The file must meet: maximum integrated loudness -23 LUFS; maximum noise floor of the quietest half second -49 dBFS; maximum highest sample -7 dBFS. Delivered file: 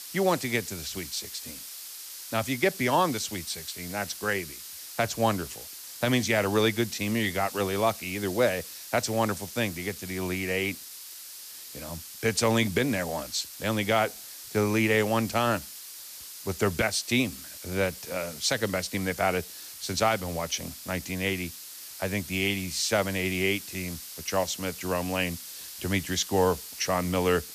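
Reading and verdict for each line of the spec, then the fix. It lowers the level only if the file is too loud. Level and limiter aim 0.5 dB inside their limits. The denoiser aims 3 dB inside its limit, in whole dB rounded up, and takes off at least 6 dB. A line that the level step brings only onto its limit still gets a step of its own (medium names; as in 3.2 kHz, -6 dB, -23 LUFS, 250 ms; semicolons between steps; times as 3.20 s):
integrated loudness -28.5 LUFS: pass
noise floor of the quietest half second -43 dBFS: fail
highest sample -12.0 dBFS: pass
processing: noise reduction 9 dB, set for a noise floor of -43 dBFS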